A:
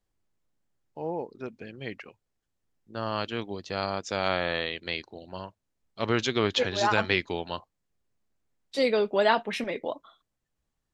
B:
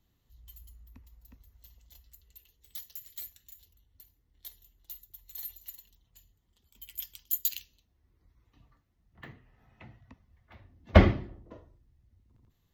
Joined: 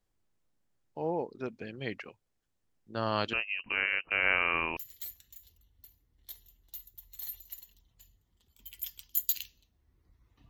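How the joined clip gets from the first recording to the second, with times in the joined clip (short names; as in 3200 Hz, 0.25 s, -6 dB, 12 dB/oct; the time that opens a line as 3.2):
A
3.33–4.77 inverted band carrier 2900 Hz
4.77 switch to B from 2.93 s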